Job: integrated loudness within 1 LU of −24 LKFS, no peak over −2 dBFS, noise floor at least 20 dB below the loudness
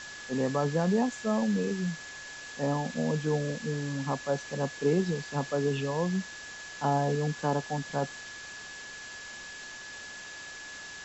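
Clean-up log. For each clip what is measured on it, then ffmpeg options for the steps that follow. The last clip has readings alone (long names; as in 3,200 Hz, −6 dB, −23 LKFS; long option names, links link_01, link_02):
interfering tone 1,700 Hz; level of the tone −43 dBFS; background noise floor −44 dBFS; target noise floor −52 dBFS; integrated loudness −32.0 LKFS; sample peak −15.0 dBFS; target loudness −24.0 LKFS
→ -af "bandreject=frequency=1700:width=30"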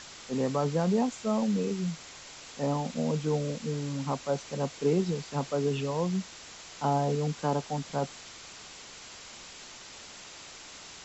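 interfering tone none found; background noise floor −48 dBFS; target noise floor −51 dBFS
→ -af "afftdn=noise_reduction=6:noise_floor=-48"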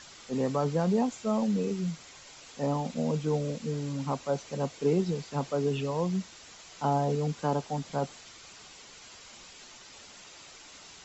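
background noise floor −51 dBFS; integrated loudness −30.5 LKFS; sample peak −15.5 dBFS; target loudness −24.0 LKFS
→ -af "volume=6.5dB"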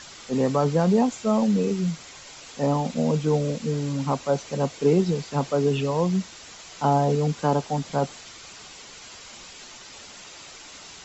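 integrated loudness −24.0 LKFS; sample peak −9.0 dBFS; background noise floor −44 dBFS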